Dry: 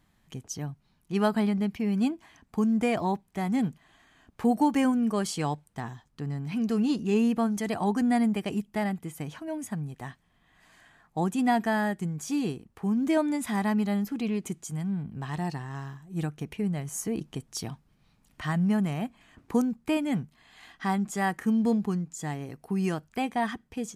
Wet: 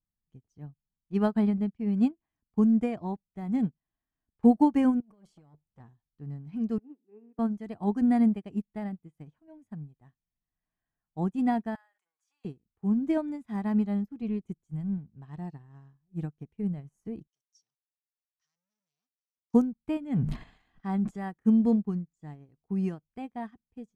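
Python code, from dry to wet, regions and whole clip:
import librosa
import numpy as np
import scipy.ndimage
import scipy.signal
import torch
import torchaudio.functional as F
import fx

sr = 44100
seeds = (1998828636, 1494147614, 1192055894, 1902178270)

y = fx.chain(x, sr, fx.over_compress(threshold_db=-34.0, ratio=-1.0),
    fx.transformer_sat(knee_hz=1200.0), at=(5.0, 5.8))
y = fx.chain(y, sr, fx.ellip_bandpass(low_hz=270.0, high_hz=2000.0, order=3, stop_db=40),
    fx.comb_fb(f0_hz=430.0, decay_s=0.6, harmonics='all', damping=0.0, mix_pct=60), at=(6.78, 7.39))
y = fx.chain(y, sr, fx.highpass(hz=950.0, slope=24),
    fx.sustainer(db_per_s=110.0), at=(11.75, 12.45))
y = fx.chain(y, sr, fx.low_shelf(hz=69.0, db=10.0),
    fx.notch(hz=5000.0, q=20.0), at=(14.22, 14.98))
y = fx.chain(y, sr, fx.leveller(passes=5),
    fx.bandpass_q(hz=5800.0, q=9.2), at=(17.27, 19.54))
y = fx.chain(y, sr, fx.high_shelf(hz=10000.0, db=-4.5),
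    fx.sustainer(db_per_s=23.0), at=(20.05, 21.2))
y = fx.tilt_eq(y, sr, slope=-3.0)
y = fx.upward_expand(y, sr, threshold_db=-37.0, expansion=2.5)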